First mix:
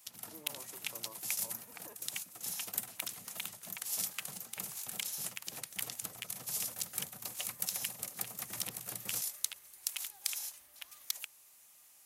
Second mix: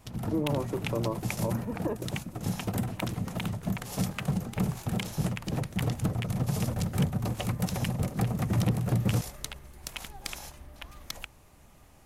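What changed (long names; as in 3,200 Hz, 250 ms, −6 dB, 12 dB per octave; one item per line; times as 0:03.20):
background −4.5 dB
master: remove first difference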